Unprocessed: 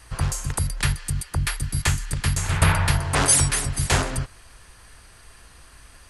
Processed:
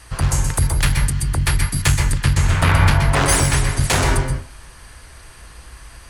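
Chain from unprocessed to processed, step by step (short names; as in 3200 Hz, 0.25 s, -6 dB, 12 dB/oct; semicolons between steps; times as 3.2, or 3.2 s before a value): 2.18–3.84 high shelf 7800 Hz -11 dB; one-sided clip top -19.5 dBFS; reverb RT60 0.30 s, pre-delay 0.117 s, DRR 2.5 dB; gain +5 dB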